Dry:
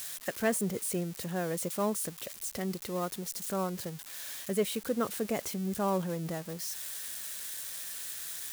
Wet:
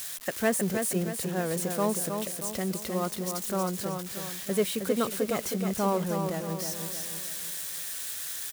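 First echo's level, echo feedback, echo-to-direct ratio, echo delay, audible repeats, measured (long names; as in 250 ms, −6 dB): −6.0 dB, 45%, −5.0 dB, 315 ms, 5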